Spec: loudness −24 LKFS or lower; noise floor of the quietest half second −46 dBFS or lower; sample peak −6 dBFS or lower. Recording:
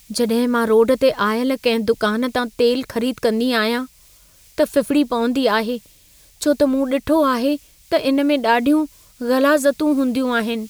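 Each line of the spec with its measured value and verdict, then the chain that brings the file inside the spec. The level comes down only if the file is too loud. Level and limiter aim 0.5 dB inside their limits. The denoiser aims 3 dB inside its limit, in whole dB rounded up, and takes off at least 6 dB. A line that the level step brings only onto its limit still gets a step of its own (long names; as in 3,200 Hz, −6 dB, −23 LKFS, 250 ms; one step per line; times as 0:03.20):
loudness −18.5 LKFS: out of spec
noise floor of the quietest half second −50 dBFS: in spec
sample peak −5.0 dBFS: out of spec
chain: level −6 dB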